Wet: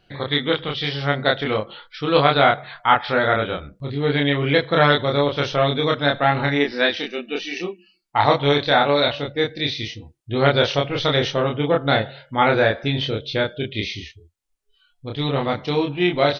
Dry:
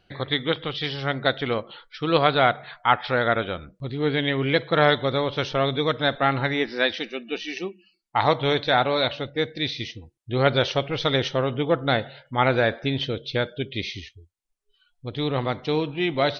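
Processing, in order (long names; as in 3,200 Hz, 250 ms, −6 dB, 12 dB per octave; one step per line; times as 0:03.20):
double-tracking delay 28 ms −2 dB
level +1.5 dB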